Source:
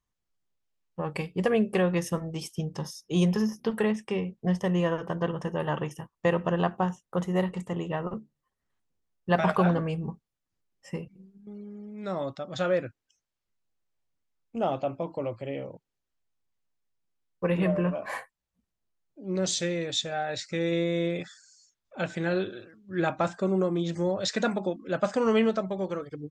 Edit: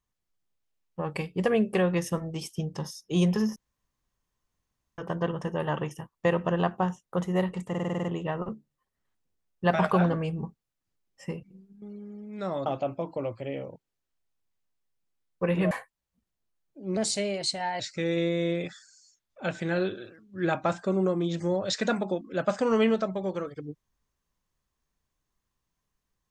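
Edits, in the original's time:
0:03.56–0:04.98: fill with room tone
0:07.69: stutter 0.05 s, 8 plays
0:12.31–0:14.67: remove
0:17.72–0:18.12: remove
0:19.38–0:20.35: play speed 117%

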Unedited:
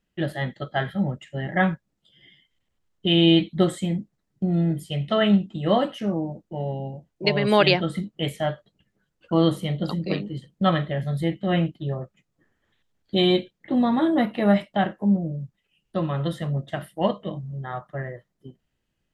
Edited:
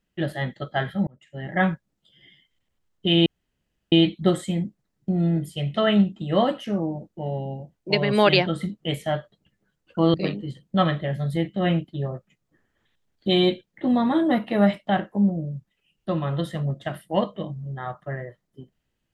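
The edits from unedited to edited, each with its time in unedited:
0:01.07–0:01.64: fade in
0:03.26: splice in room tone 0.66 s
0:09.48–0:10.01: remove

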